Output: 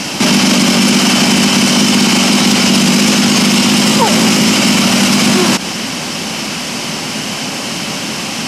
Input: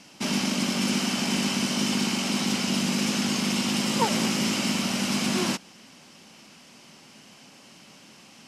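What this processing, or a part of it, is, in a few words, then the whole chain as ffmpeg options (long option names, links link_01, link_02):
loud club master: -af "acompressor=threshold=-27dB:ratio=2.5,asoftclip=type=hard:threshold=-20dB,alimiter=level_in=32dB:limit=-1dB:release=50:level=0:latency=1,volume=-1dB"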